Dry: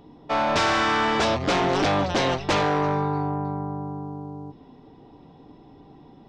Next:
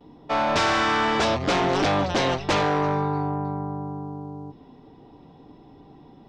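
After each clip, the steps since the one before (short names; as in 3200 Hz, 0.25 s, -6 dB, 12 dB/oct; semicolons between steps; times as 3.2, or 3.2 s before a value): gate with hold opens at -42 dBFS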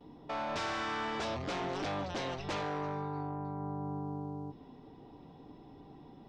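limiter -27 dBFS, peak gain reduction 11 dB; gain -4.5 dB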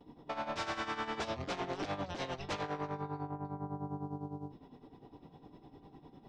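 tremolo 9.9 Hz, depth 73%; gain +1 dB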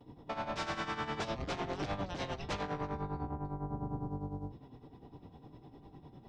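octaver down 1 oct, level 0 dB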